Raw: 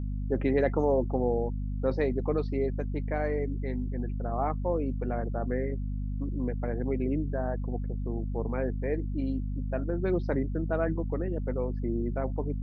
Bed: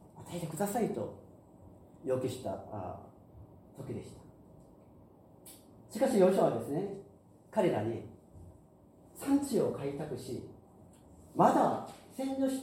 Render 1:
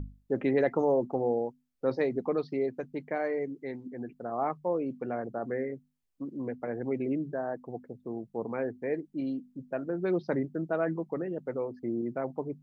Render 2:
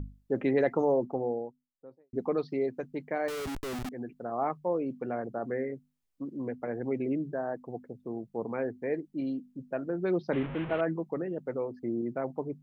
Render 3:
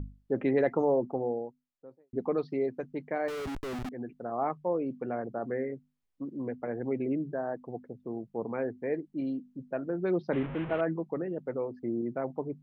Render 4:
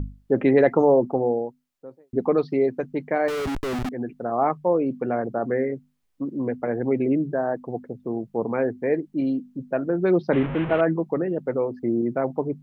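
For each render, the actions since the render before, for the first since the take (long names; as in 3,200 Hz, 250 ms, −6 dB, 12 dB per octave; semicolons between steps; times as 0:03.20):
mains-hum notches 50/100/150/200/250 Hz
0:00.79–0:02.13: fade out and dull; 0:03.28–0:03.89: comparator with hysteresis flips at −45 dBFS; 0:10.33–0:10.81: linear delta modulator 16 kbit/s, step −32 dBFS
high-shelf EQ 4,900 Hz −9.5 dB
level +9 dB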